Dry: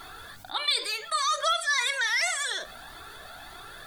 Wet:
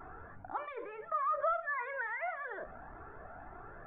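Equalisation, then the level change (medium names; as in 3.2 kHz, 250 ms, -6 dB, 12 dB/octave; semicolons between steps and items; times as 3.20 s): Gaussian low-pass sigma 6.4 samples; 0.0 dB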